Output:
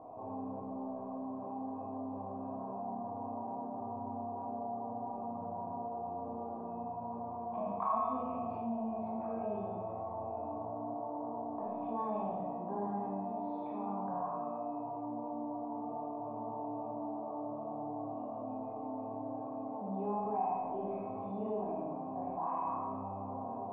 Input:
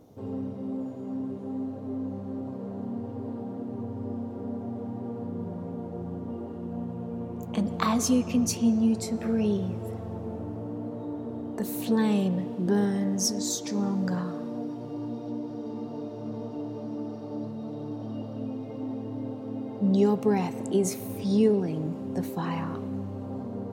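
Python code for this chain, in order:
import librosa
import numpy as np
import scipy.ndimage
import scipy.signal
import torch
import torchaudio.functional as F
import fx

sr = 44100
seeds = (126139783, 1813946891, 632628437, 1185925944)

y = fx.formant_cascade(x, sr, vowel='a')
y = fx.comb_fb(y, sr, f0_hz=320.0, decay_s=0.79, harmonics='all', damping=0.0, mix_pct=90)
y = fx.rev_schroeder(y, sr, rt60_s=0.95, comb_ms=27, drr_db=-5.0)
y = fx.env_flatten(y, sr, amount_pct=50)
y = y * librosa.db_to_amplitude(16.0)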